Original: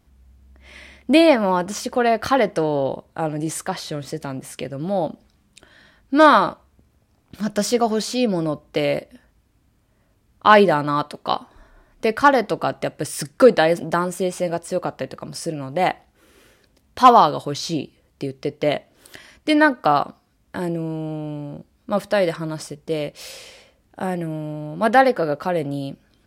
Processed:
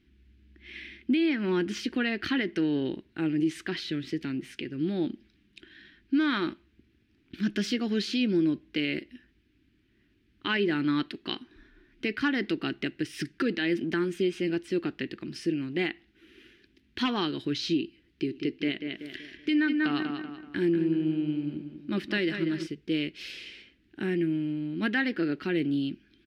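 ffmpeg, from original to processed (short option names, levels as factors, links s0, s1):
-filter_complex "[0:a]asplit=3[s0][s1][s2];[s0]afade=t=out:st=18.24:d=0.02[s3];[s1]asplit=2[s4][s5];[s5]adelay=190,lowpass=f=3600:p=1,volume=0.398,asplit=2[s6][s7];[s7]adelay=190,lowpass=f=3600:p=1,volume=0.4,asplit=2[s8][s9];[s9]adelay=190,lowpass=f=3600:p=1,volume=0.4,asplit=2[s10][s11];[s11]adelay=190,lowpass=f=3600:p=1,volume=0.4,asplit=2[s12][s13];[s13]adelay=190,lowpass=f=3600:p=1,volume=0.4[s14];[s4][s6][s8][s10][s12][s14]amix=inputs=6:normalize=0,afade=t=in:st=18.24:d=0.02,afade=t=out:st=22.65:d=0.02[s15];[s2]afade=t=in:st=22.65:d=0.02[s16];[s3][s15][s16]amix=inputs=3:normalize=0,firequalizer=gain_entry='entry(130,0);entry(340,13);entry(540,-15);entry(1100,-10);entry(1600,7);entry(2800,11);entry(7500,-11)':delay=0.05:min_phase=1,alimiter=limit=0.335:level=0:latency=1:release=214,volume=0.376"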